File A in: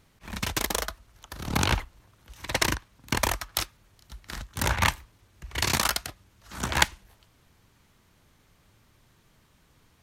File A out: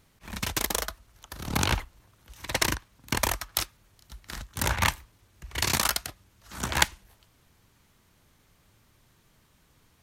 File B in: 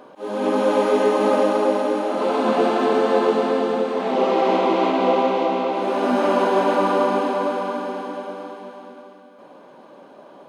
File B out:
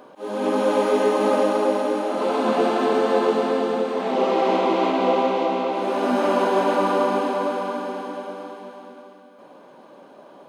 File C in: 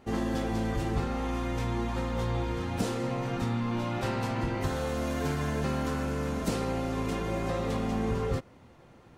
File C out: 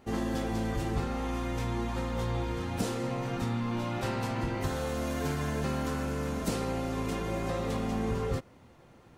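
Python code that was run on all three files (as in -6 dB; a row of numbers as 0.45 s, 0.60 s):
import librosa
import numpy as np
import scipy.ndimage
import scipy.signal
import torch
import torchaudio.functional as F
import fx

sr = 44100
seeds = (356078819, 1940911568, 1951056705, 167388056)

y = fx.high_shelf(x, sr, hz=7200.0, db=4.5)
y = y * librosa.db_to_amplitude(-1.5)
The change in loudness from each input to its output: -0.5 LU, -1.5 LU, -1.5 LU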